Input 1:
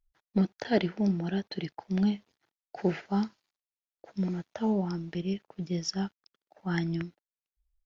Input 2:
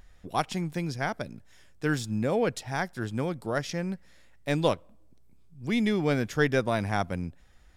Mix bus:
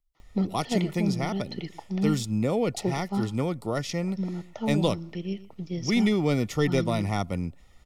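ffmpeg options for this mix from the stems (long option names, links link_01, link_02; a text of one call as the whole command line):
ffmpeg -i stem1.wav -i stem2.wav -filter_complex "[0:a]volume=-0.5dB,asplit=2[link_01][link_02];[link_02]volume=-17.5dB[link_03];[1:a]adelay=200,volume=3dB[link_04];[link_03]aecho=0:1:117:1[link_05];[link_01][link_04][link_05]amix=inputs=3:normalize=0,acrossover=split=380|3000[link_06][link_07][link_08];[link_07]acompressor=threshold=-30dB:ratio=2.5[link_09];[link_06][link_09][link_08]amix=inputs=3:normalize=0,asuperstop=centerf=1600:order=20:qfactor=5.4" out.wav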